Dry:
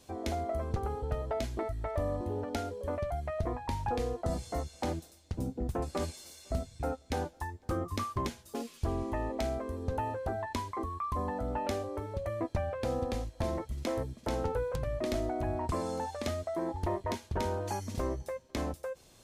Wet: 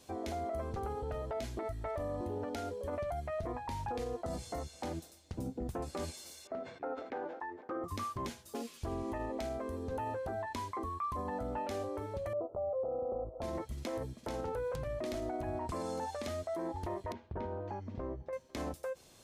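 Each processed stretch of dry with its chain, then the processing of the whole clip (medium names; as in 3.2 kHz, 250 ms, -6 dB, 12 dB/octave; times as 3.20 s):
6.47–7.84 s: Chebyshev band-pass 340–1700 Hz + decay stretcher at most 80 dB/s
12.33–13.42 s: high-order bell 530 Hz +13.5 dB 1.2 oct + compression, threshold -29 dBFS + brick-wall FIR low-pass 1.4 kHz
17.12–18.33 s: tape spacing loss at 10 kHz 44 dB + compression 1.5:1, threshold -39 dBFS
whole clip: bass shelf 91 Hz -7 dB; peak limiter -30 dBFS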